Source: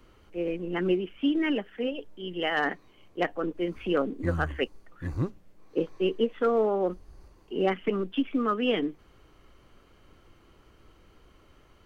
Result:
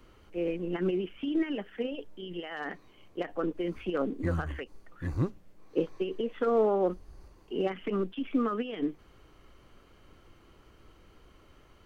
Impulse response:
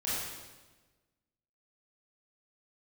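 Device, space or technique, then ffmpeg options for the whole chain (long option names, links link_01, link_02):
de-esser from a sidechain: -filter_complex "[0:a]asplit=2[link_01][link_02];[link_02]highpass=4500,apad=whole_len=522922[link_03];[link_01][link_03]sidechaincompress=threshold=-52dB:ratio=8:attack=1.7:release=54"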